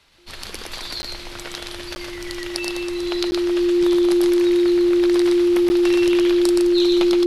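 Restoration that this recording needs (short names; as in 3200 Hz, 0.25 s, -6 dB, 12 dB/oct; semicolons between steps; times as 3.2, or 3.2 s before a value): notch 350 Hz, Q 30; interpolate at 1.02/1.95/3.31/5.69, 10 ms; inverse comb 0.12 s -3.5 dB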